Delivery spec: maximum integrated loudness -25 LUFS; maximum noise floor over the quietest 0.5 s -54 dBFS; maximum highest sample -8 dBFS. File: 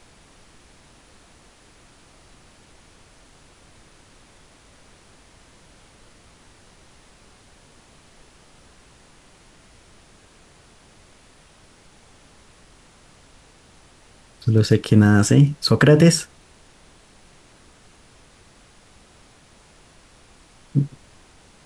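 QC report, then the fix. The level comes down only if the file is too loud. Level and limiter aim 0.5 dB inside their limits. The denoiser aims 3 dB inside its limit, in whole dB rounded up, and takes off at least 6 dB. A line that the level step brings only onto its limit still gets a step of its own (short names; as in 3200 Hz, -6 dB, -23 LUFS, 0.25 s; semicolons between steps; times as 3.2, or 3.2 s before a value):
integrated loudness -17.0 LUFS: fail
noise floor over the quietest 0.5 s -52 dBFS: fail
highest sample -3.0 dBFS: fail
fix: gain -8.5 dB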